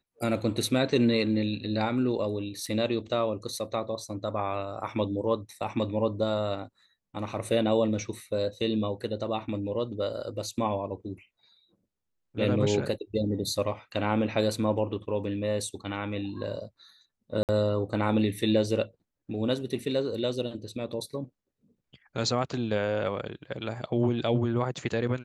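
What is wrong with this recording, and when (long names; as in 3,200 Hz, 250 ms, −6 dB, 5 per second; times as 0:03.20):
0:02.66: drop-out 3.9 ms
0:17.43–0:17.49: drop-out 58 ms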